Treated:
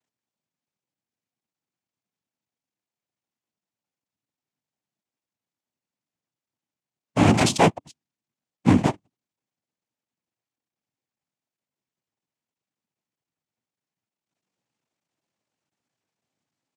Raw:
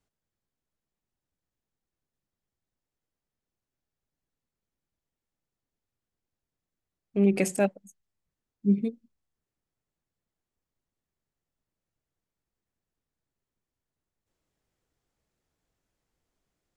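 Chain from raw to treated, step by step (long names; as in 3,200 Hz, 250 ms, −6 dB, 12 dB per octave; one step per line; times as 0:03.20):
sub-harmonics by changed cycles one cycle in 3, muted
comb filter 6.3 ms, depth 71%
leveller curve on the samples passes 2
frequency shifter −60 Hz
cochlear-implant simulation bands 4
level +3 dB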